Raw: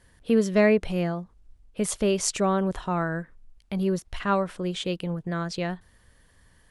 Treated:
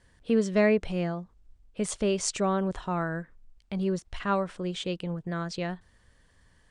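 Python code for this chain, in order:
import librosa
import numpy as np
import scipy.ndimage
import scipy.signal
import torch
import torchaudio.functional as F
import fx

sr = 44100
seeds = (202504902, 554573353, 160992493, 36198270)

y = scipy.signal.sosfilt(scipy.signal.butter(8, 9300.0, 'lowpass', fs=sr, output='sos'), x)
y = y * librosa.db_to_amplitude(-3.0)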